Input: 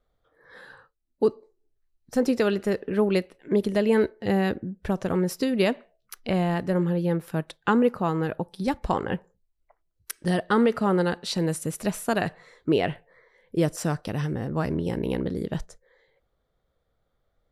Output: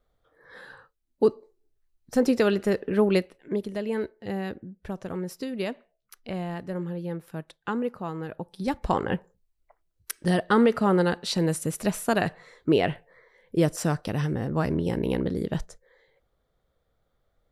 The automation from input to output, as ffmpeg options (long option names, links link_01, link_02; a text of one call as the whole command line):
ffmpeg -i in.wav -af "volume=10dB,afade=type=out:start_time=3.16:duration=0.48:silence=0.354813,afade=type=in:start_time=8.29:duration=0.69:silence=0.354813" out.wav